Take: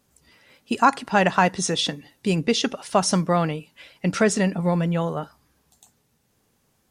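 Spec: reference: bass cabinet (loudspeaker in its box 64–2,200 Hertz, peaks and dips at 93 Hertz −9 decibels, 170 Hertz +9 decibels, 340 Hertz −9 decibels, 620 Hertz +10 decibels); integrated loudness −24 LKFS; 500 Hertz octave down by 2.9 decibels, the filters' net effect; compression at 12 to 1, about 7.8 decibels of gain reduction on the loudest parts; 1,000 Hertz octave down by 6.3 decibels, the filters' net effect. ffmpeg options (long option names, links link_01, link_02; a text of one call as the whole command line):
ffmpeg -i in.wav -af "equalizer=frequency=500:width_type=o:gain=-6.5,equalizer=frequency=1000:width_type=o:gain=-8.5,acompressor=threshold=-26dB:ratio=12,highpass=frequency=64:width=0.5412,highpass=frequency=64:width=1.3066,equalizer=frequency=93:width_type=q:width=4:gain=-9,equalizer=frequency=170:width_type=q:width=4:gain=9,equalizer=frequency=340:width_type=q:width=4:gain=-9,equalizer=frequency=620:width_type=q:width=4:gain=10,lowpass=frequency=2200:width=0.5412,lowpass=frequency=2200:width=1.3066,volume=3.5dB" out.wav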